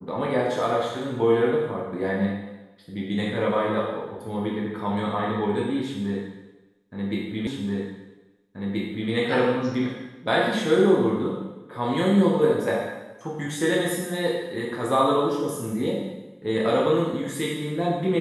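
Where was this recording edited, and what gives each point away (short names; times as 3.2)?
7.47 repeat of the last 1.63 s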